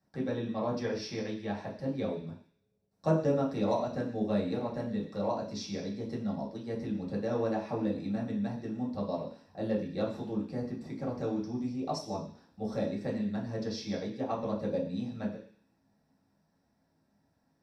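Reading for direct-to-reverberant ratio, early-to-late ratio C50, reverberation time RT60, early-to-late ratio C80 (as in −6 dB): −7.0 dB, 7.5 dB, non-exponential decay, 11.0 dB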